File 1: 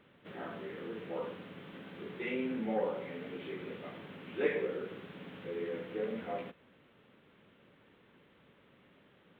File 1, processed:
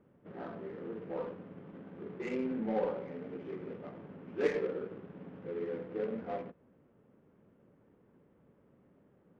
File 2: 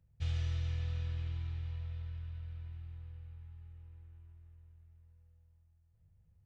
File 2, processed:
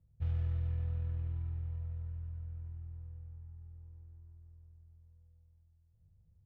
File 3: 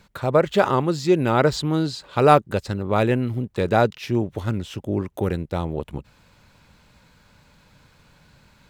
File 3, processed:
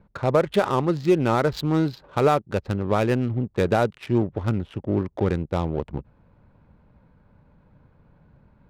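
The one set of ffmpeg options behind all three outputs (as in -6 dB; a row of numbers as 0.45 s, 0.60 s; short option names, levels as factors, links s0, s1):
-af "adynamicsmooth=sensitivity=4:basefreq=830,alimiter=limit=0.316:level=0:latency=1:release=373,volume=1.12"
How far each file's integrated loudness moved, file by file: +0.5 LU, +1.0 LU, -2.0 LU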